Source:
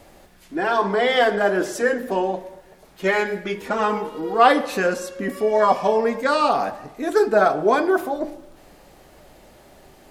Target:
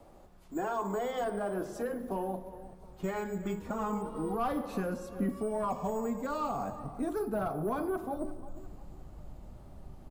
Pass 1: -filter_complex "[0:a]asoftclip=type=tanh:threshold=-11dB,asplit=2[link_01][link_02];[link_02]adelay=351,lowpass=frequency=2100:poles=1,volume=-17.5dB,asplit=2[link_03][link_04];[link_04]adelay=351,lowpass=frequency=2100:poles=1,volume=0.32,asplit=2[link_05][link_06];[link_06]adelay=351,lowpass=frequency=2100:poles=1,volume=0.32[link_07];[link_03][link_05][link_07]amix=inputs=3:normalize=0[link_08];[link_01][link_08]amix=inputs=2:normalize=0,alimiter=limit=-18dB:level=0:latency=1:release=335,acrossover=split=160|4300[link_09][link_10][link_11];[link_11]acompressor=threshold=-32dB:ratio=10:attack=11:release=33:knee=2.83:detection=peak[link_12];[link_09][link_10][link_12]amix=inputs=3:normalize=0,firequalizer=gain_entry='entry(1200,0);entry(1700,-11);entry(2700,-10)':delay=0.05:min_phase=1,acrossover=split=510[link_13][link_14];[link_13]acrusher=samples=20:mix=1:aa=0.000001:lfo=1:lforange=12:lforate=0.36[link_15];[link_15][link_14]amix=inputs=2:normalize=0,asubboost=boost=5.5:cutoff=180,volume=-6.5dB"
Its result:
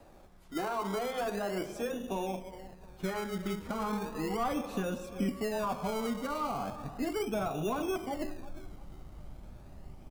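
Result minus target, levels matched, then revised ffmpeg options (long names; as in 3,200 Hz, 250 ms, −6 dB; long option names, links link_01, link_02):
sample-and-hold swept by an LFO: distortion +14 dB
-filter_complex "[0:a]asoftclip=type=tanh:threshold=-11dB,asplit=2[link_01][link_02];[link_02]adelay=351,lowpass=frequency=2100:poles=1,volume=-17.5dB,asplit=2[link_03][link_04];[link_04]adelay=351,lowpass=frequency=2100:poles=1,volume=0.32,asplit=2[link_05][link_06];[link_06]adelay=351,lowpass=frequency=2100:poles=1,volume=0.32[link_07];[link_03][link_05][link_07]amix=inputs=3:normalize=0[link_08];[link_01][link_08]amix=inputs=2:normalize=0,alimiter=limit=-18dB:level=0:latency=1:release=335,acrossover=split=160|4300[link_09][link_10][link_11];[link_11]acompressor=threshold=-32dB:ratio=10:attack=11:release=33:knee=2.83:detection=peak[link_12];[link_09][link_10][link_12]amix=inputs=3:normalize=0,firequalizer=gain_entry='entry(1200,0);entry(1700,-11);entry(2700,-10)':delay=0.05:min_phase=1,acrossover=split=510[link_13][link_14];[link_13]acrusher=samples=5:mix=1:aa=0.000001:lfo=1:lforange=3:lforate=0.36[link_15];[link_15][link_14]amix=inputs=2:normalize=0,asubboost=boost=5.5:cutoff=180,volume=-6.5dB"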